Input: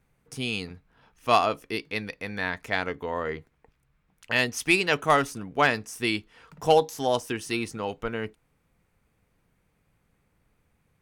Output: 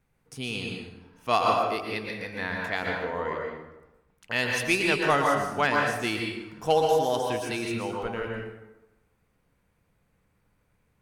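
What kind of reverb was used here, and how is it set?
plate-style reverb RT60 1 s, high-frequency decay 0.6×, pre-delay 0.105 s, DRR -0.5 dB; gain -3.5 dB

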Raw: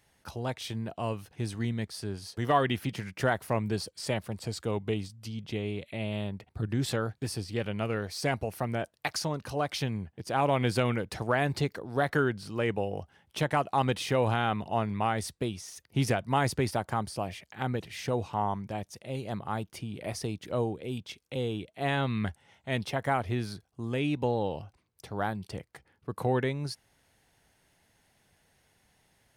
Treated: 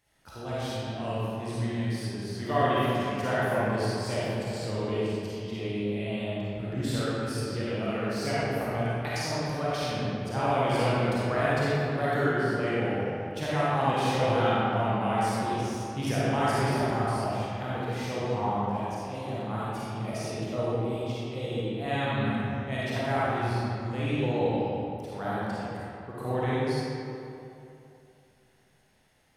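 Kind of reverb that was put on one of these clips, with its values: digital reverb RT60 2.8 s, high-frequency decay 0.6×, pre-delay 10 ms, DRR -9.5 dB; gain -7.5 dB

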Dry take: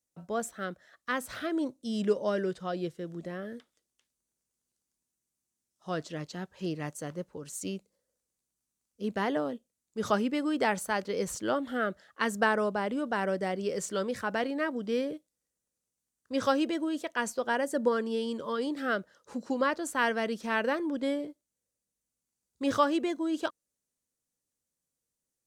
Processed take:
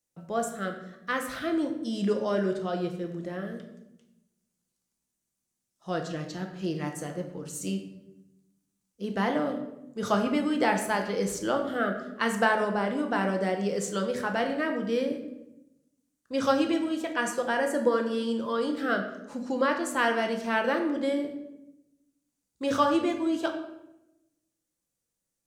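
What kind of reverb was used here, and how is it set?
shoebox room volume 320 m³, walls mixed, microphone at 0.78 m; gain +1 dB

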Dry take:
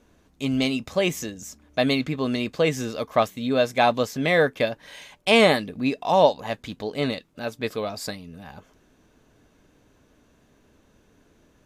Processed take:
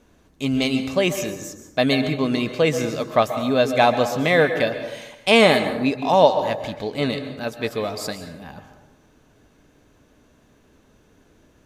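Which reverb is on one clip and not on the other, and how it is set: plate-style reverb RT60 1 s, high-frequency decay 0.5×, pre-delay 0.115 s, DRR 8.5 dB; gain +2.5 dB

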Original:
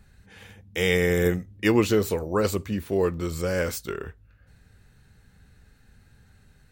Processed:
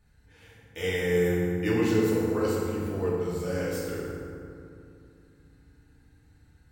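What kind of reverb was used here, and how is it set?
FDN reverb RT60 2.5 s, low-frequency decay 1.4×, high-frequency decay 0.5×, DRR -7 dB; gain -12.5 dB

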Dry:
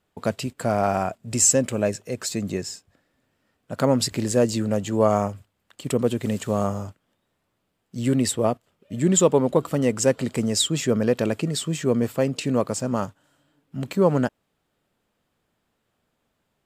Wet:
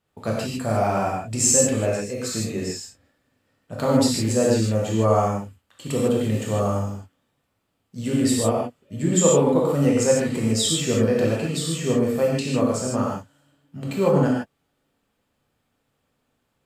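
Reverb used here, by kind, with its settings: non-linear reverb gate 0.18 s flat, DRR -5 dB; gain -5 dB

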